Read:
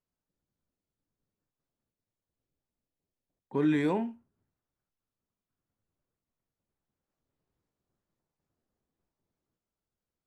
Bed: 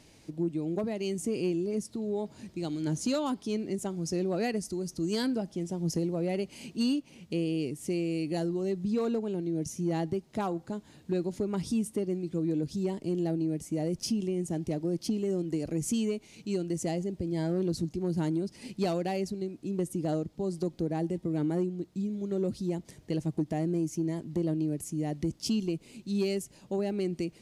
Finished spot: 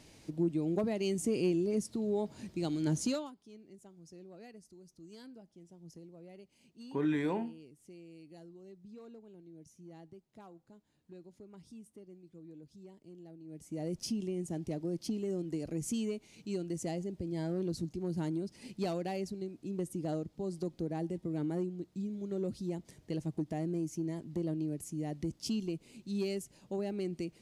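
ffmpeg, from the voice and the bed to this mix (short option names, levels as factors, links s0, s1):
-filter_complex "[0:a]adelay=3400,volume=0.562[s0];[1:a]volume=6.31,afade=t=out:st=3:d=0.31:silence=0.0841395,afade=t=in:st=13.44:d=0.47:silence=0.149624[s1];[s0][s1]amix=inputs=2:normalize=0"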